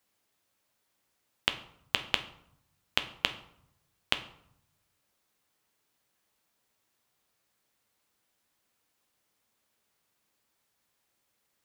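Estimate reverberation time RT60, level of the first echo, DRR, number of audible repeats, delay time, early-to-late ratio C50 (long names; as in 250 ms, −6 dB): 0.70 s, no echo audible, 8.0 dB, no echo audible, no echo audible, 13.5 dB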